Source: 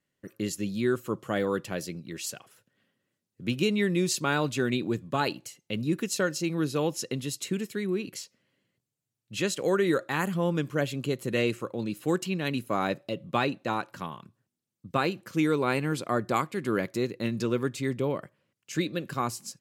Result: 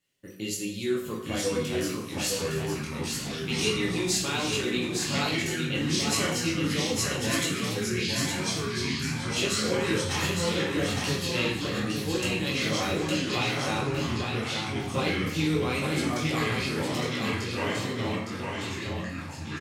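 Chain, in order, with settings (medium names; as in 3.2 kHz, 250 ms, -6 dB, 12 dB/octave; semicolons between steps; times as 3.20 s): fade out at the end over 3.83 s; in parallel at +2.5 dB: compression, threshold -36 dBFS, peak gain reduction 14.5 dB; on the sum: chorus voices 6, 1.4 Hz, delay 19 ms, depth 3 ms; resonant high shelf 2.1 kHz +6.5 dB, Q 1.5; ever faster or slower copies 758 ms, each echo -4 st, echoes 3; on a send: multi-tap echo 292/861 ms -18/-4.5 dB; on the sum: plate-style reverb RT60 0.67 s, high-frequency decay 0.85×, DRR -0.5 dB; trim -6.5 dB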